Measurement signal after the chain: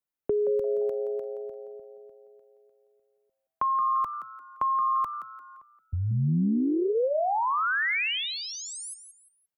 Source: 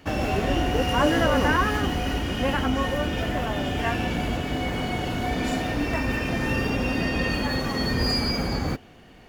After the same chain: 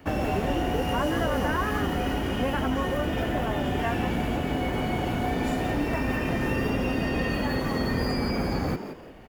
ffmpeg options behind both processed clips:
ffmpeg -i in.wav -filter_complex "[0:a]equalizer=frequency=5000:width_type=o:width=2.1:gain=-8.5,acrossover=split=140|3400[link_01][link_02][link_03];[link_01]acompressor=threshold=-33dB:ratio=4[link_04];[link_02]acompressor=threshold=-27dB:ratio=4[link_05];[link_03]acompressor=threshold=-43dB:ratio=4[link_06];[link_04][link_05][link_06]amix=inputs=3:normalize=0,asplit=4[link_07][link_08][link_09][link_10];[link_08]adelay=173,afreqshift=120,volume=-10.5dB[link_11];[link_09]adelay=346,afreqshift=240,volume=-20.7dB[link_12];[link_10]adelay=519,afreqshift=360,volume=-30.8dB[link_13];[link_07][link_11][link_12][link_13]amix=inputs=4:normalize=0,volume=2dB" out.wav

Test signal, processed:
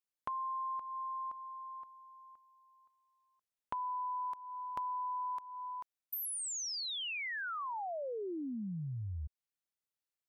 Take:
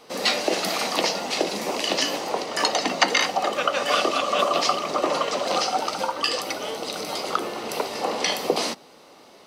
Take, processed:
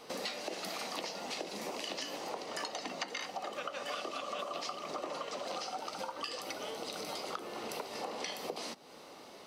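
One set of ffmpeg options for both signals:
ffmpeg -i in.wav -af "acompressor=threshold=-36dB:ratio=5,volume=-2.5dB" out.wav

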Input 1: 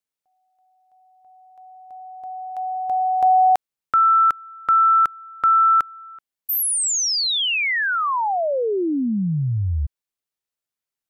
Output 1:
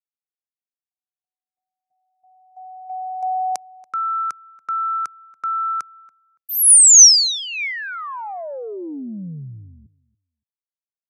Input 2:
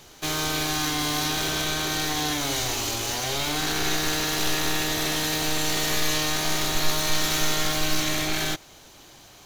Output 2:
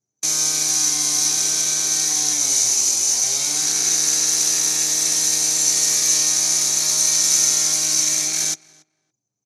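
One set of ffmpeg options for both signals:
ffmpeg -i in.wav -filter_complex "[0:a]aexciter=amount=8.4:drive=3.5:freq=4500,anlmdn=10000,highpass=frequency=130:width=0.5412,highpass=frequency=130:width=1.3066,equalizer=frequency=2300:width_type=q:width=4:gain=7,equalizer=frequency=6000:width_type=q:width=4:gain=8,equalizer=frequency=9800:width_type=q:width=4:gain=4,lowpass=frequency=9800:width=0.5412,lowpass=frequency=9800:width=1.3066,asplit=2[link_01][link_02];[link_02]adelay=283,lowpass=frequency=2300:poles=1,volume=-21.5dB,asplit=2[link_03][link_04];[link_04]adelay=283,lowpass=frequency=2300:poles=1,volume=0.16[link_05];[link_03][link_05]amix=inputs=2:normalize=0[link_06];[link_01][link_06]amix=inputs=2:normalize=0,volume=-7.5dB" out.wav

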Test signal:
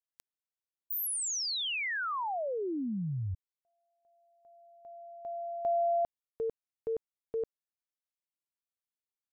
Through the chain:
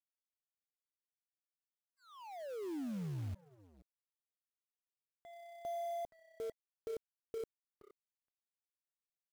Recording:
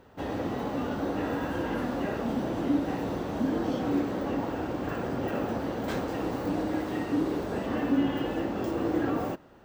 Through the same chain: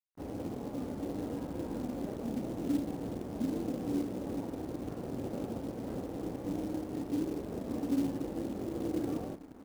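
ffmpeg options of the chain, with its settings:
ffmpeg -i in.wav -filter_complex "[0:a]firequalizer=gain_entry='entry(300,0);entry(1700,-19);entry(4600,-29)':delay=0.05:min_phase=1,asplit=5[link_01][link_02][link_03][link_04][link_05];[link_02]adelay=470,afreqshift=-32,volume=-15dB[link_06];[link_03]adelay=940,afreqshift=-64,volume=-23dB[link_07];[link_04]adelay=1410,afreqshift=-96,volume=-30.9dB[link_08];[link_05]adelay=1880,afreqshift=-128,volume=-38.9dB[link_09];[link_01][link_06][link_07][link_08][link_09]amix=inputs=5:normalize=0,aeval=exprs='sgn(val(0))*max(abs(val(0))-0.00355,0)':channel_layout=same,acrusher=bits=5:mode=log:mix=0:aa=0.000001,volume=-5dB" out.wav

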